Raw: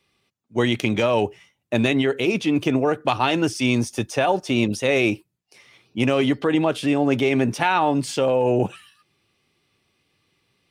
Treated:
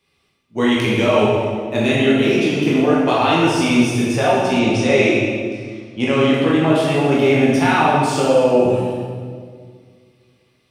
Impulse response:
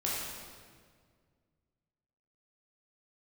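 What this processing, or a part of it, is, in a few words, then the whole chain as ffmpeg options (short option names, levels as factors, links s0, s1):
stairwell: -filter_complex "[1:a]atrim=start_sample=2205[s0];[0:a][s0]afir=irnorm=-1:irlink=0,asettb=1/sr,asplit=3[s1][s2][s3];[s1]atrim=end=4.594[s4];[s2]atrim=start=4.59:end=6.34,asetpts=PTS-STARTPTS,afade=t=in:d=0.004:c=qsin,afade=t=out:st=1.746:d=0.004:c=qsin,lowpass=f=8400:w=0.5412,lowpass=f=8400:w=1.3066[s5];[s3]atrim=start=6.336[s6];[s4][s5]acrossfade=d=0.004:c1=hsin:c2=qsin[s7];[s7][s6]acrossfade=d=0.004:c1=qsin:c2=hsin,volume=0.891"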